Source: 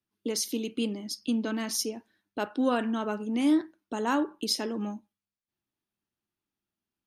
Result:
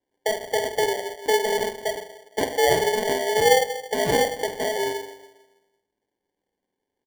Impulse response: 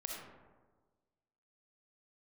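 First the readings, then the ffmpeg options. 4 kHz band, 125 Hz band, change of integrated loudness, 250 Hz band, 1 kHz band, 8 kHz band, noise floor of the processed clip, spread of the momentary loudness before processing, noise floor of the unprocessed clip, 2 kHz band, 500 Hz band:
+6.5 dB, can't be measured, +6.5 dB, −7.5 dB, +10.5 dB, +5.0 dB, −83 dBFS, 10 LU, below −85 dBFS, +12.5 dB, +12.5 dB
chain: -filter_complex "[0:a]equalizer=frequency=1100:width=3.5:gain=-12,asplit=2[link_01][link_02];[link_02]acompressor=threshold=-34dB:ratio=6,volume=-2dB[link_03];[link_01][link_03]amix=inputs=2:normalize=0,asplit=2[link_04][link_05];[link_05]adelay=47,volume=-9.5dB[link_06];[link_04][link_06]amix=inputs=2:normalize=0,asplit=2[link_07][link_08];[1:a]atrim=start_sample=2205,asetrate=57330,aresample=44100[link_09];[link_08][link_09]afir=irnorm=-1:irlink=0,volume=-2.5dB[link_10];[link_07][link_10]amix=inputs=2:normalize=0,lowpass=frequency=3100:width_type=q:width=0.5098,lowpass=frequency=3100:width_type=q:width=0.6013,lowpass=frequency=3100:width_type=q:width=0.9,lowpass=frequency=3100:width_type=q:width=2.563,afreqshift=-3700,acrusher=samples=34:mix=1:aa=0.000001,volume=1.5dB"

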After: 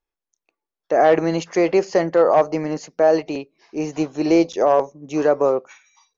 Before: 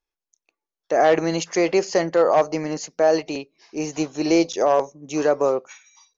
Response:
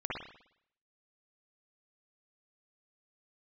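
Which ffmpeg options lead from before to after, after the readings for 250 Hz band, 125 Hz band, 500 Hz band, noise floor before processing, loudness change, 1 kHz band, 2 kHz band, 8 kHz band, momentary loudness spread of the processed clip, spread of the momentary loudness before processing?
+2.5 dB, +2.5 dB, +2.0 dB, below −85 dBFS, +2.0 dB, +2.0 dB, 0.0 dB, can't be measured, 11 LU, 11 LU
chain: -af "highshelf=frequency=3500:gain=-11.5,volume=2.5dB"

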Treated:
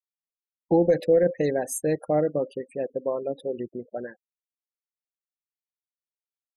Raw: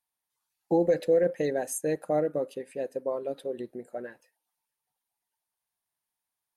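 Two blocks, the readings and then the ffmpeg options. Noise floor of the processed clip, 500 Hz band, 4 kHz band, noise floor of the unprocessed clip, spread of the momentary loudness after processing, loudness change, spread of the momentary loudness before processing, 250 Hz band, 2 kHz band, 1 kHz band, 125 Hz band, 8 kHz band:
below −85 dBFS, +3.5 dB, can't be measured, below −85 dBFS, 14 LU, +3.5 dB, 15 LU, +4.5 dB, +2.5 dB, +3.0 dB, +6.5 dB, +2.5 dB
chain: -af "afftfilt=real='re*gte(hypot(re,im),0.00631)':imag='im*gte(hypot(re,im),0.00631)':win_size=1024:overlap=0.75,lowshelf=frequency=170:gain=8,volume=2.5dB"

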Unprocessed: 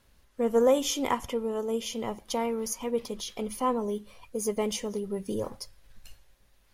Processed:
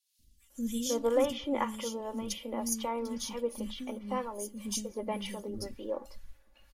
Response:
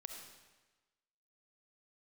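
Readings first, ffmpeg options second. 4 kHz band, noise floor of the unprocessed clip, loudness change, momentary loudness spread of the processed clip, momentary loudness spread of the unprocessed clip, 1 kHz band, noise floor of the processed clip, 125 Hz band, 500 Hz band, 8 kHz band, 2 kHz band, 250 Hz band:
−3.5 dB, −63 dBFS, −4.5 dB, 10 LU, 13 LU, −4.5 dB, −65 dBFS, −4.5 dB, −5.5 dB, −2.0 dB, −3.5 dB, −3.0 dB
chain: -filter_complex "[0:a]aecho=1:1:3.5:0.61,acrossover=split=890[link_01][link_02];[link_01]aeval=exprs='val(0)*(1-0.7/2+0.7/2*cos(2*PI*2*n/s))':channel_layout=same[link_03];[link_02]aeval=exprs='val(0)*(1-0.7/2-0.7/2*cos(2*PI*2*n/s))':channel_layout=same[link_04];[link_03][link_04]amix=inputs=2:normalize=0,acrossover=split=270|3400[link_05][link_06][link_07];[link_05]adelay=190[link_08];[link_06]adelay=500[link_09];[link_08][link_09][link_07]amix=inputs=3:normalize=0"

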